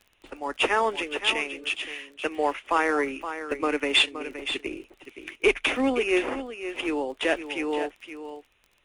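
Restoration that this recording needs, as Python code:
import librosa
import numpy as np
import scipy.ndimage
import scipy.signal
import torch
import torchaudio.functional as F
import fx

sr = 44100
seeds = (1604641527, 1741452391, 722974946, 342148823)

y = fx.fix_declick_ar(x, sr, threshold=6.5)
y = fx.fix_echo_inverse(y, sr, delay_ms=520, level_db=-10.5)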